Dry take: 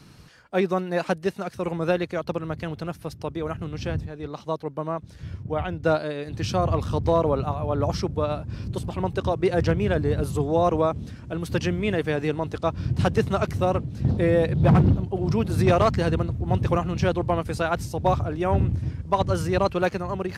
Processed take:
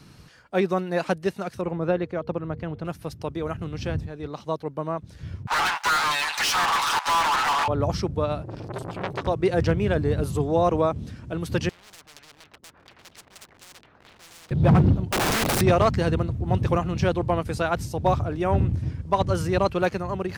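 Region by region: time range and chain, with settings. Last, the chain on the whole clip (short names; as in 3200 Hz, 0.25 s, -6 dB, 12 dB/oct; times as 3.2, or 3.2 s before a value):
1.61–2.85 LPF 1300 Hz 6 dB/oct + de-hum 235.2 Hz, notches 2
5.47–7.68 minimum comb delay 7 ms + Chebyshev high-pass 850 Hz, order 5 + overdrive pedal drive 35 dB, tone 6200 Hz, clips at -15.5 dBFS
8.43–9.27 comb 7.1 ms, depth 86% + core saturation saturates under 1800 Hz
11.69–14.51 LFO low-pass saw down 4.2 Hz 270–3500 Hz + hard clip -25.5 dBFS + spectral compressor 10:1
15.12–15.61 HPF 120 Hz 24 dB/oct + sample leveller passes 2 + wrapped overs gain 19 dB
whole clip: dry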